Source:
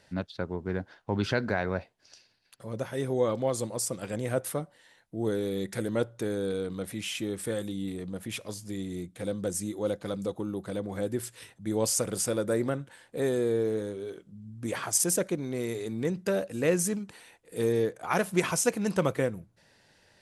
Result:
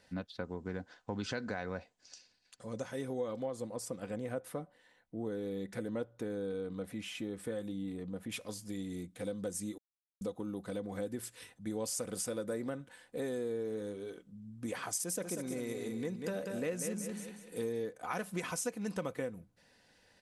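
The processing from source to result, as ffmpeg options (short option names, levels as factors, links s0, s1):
-filter_complex "[0:a]asettb=1/sr,asplit=3[s0][s1][s2];[s0]atrim=end=0.444[s3];[s1]atrim=start=0.44:end=2.92,asetpts=PTS-STARTPTS,afade=t=in:d=0.004:c=qsin,afade=t=out:st=2.476:d=0.004:c=qsin,lowpass=f=7400:t=q:w=2.7[s4];[s2]atrim=start=2.916[s5];[s3][s4]acrossfade=d=0.004:c1=hsin:c2=qsin[s6];[s6][s5]acrossfade=d=0.004:c1=qsin:c2=hsin,asettb=1/sr,asplit=3[s7][s8][s9];[s7]atrim=end=3.464[s10];[s8]atrim=start=3.46:end=8.32,asetpts=PTS-STARTPTS,afade=t=in:d=0.004:c=qsin,afade=t=out:st=4.856:d=0.004:c=qsin,highshelf=f=3100:g=-9.5[s11];[s9]atrim=start=8.316[s12];[s10][s11]acrossfade=d=0.004:c1=hsin:c2=qsin[s13];[s13][s12]acrossfade=d=0.004:c1=qsin:c2=hsin,asplit=3[s14][s15][s16];[s14]afade=t=out:st=15.22:d=0.02[s17];[s15]aecho=1:1:190|380|570|760:0.447|0.152|0.0516|0.0176,afade=t=in:st=15.22:d=0.02,afade=t=out:st=17.66:d=0.02[s18];[s16]afade=t=in:st=17.66:d=0.02[s19];[s17][s18][s19]amix=inputs=3:normalize=0,asplit=3[s20][s21][s22];[s20]atrim=end=9.78,asetpts=PTS-STARTPTS,afade=t=out:st=9.776:d=0.004:c=hsin[s23];[s21]atrim=start=9.78:end=10.21,asetpts=PTS-STARTPTS,volume=0[s24];[s22]atrim=start=10.21,asetpts=PTS-STARTPTS,afade=t=in:d=0.004:c=hsin[s25];[s23][s24][s25]concat=n=3:v=0:a=1,aecho=1:1:4:0.36,acompressor=threshold=0.0282:ratio=3,volume=0.596"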